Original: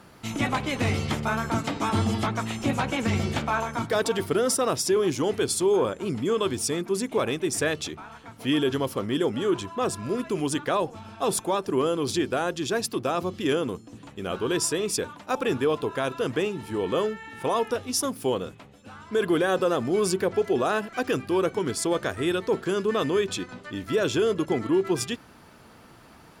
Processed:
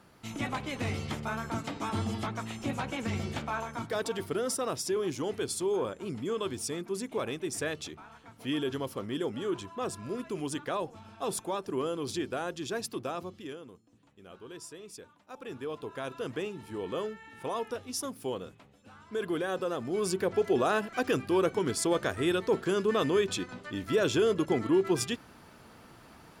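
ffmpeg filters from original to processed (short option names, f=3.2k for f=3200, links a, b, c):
-af "volume=9.5dB,afade=t=out:st=13.01:d=0.56:silence=0.251189,afade=t=in:st=15.3:d=0.86:silence=0.281838,afade=t=in:st=19.83:d=0.68:silence=0.473151"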